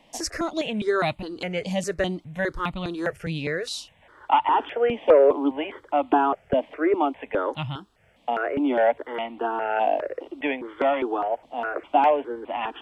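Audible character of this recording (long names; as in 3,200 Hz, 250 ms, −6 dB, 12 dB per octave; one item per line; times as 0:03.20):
notches that jump at a steady rate 4.9 Hz 380–1,600 Hz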